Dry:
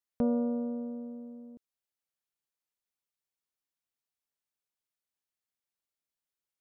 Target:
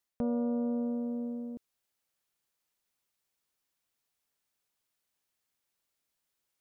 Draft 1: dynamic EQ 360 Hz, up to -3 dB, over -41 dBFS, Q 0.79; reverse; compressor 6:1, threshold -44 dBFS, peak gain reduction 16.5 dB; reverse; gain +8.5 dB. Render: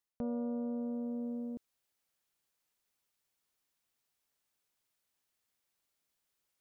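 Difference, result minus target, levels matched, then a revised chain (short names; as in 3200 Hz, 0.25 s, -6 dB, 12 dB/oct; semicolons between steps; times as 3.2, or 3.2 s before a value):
compressor: peak gain reduction +5.5 dB
dynamic EQ 360 Hz, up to -3 dB, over -41 dBFS, Q 0.79; reverse; compressor 6:1, threshold -37.5 dBFS, peak gain reduction 11 dB; reverse; gain +8.5 dB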